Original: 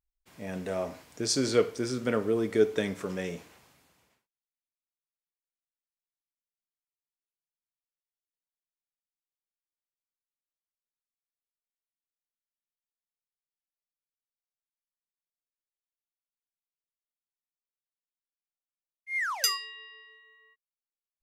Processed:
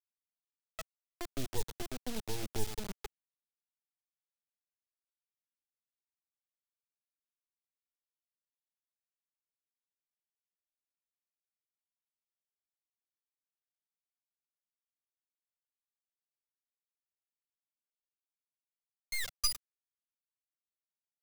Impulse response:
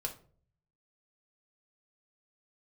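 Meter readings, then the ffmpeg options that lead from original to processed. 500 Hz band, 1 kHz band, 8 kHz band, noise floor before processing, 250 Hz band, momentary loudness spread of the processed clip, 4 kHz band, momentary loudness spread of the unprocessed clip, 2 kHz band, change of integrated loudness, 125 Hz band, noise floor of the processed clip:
−18.5 dB, −10.5 dB, −6.5 dB, below −85 dBFS, −14.5 dB, 15 LU, −7.0 dB, 16 LU, −12.0 dB, −10.0 dB, −8.0 dB, below −85 dBFS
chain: -filter_complex "[0:a]acrossover=split=650|1200[link_01][link_02][link_03];[link_02]acompressor=threshold=-50dB:ratio=8[link_04];[link_01][link_04][link_03]amix=inputs=3:normalize=0,afftfilt=real='re*gte(hypot(re,im),0.224)':imag='im*gte(hypot(re,im),0.224)':win_size=1024:overlap=0.75,aecho=1:1:104|208|312|416|520:0.15|0.0853|0.0486|0.0277|0.0158,acrusher=bits=3:dc=4:mix=0:aa=0.000001,acrossover=split=170|3000[link_05][link_06][link_07];[link_06]acompressor=threshold=-43dB:ratio=6[link_08];[link_05][link_08][link_07]amix=inputs=3:normalize=0,volume=1.5dB"

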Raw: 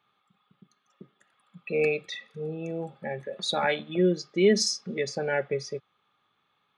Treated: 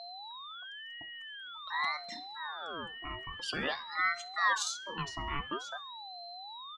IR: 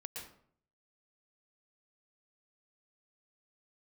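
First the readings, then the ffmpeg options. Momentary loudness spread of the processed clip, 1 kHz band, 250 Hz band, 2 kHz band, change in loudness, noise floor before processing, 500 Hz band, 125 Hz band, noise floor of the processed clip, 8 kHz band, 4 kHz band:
13 LU, +1.5 dB, −17.5 dB, 0.0 dB, −8.5 dB, −74 dBFS, −20.0 dB, −13.0 dB, −46 dBFS, −7.0 dB, −3.5 dB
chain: -af "aecho=1:1:66|132|198:0.075|0.033|0.0145,aeval=exprs='val(0)+0.02*sin(2*PI*2400*n/s)':channel_layout=same,aeval=exprs='val(0)*sin(2*PI*1100*n/s+1100*0.55/0.48*sin(2*PI*0.48*n/s))':channel_layout=same,volume=-6dB"

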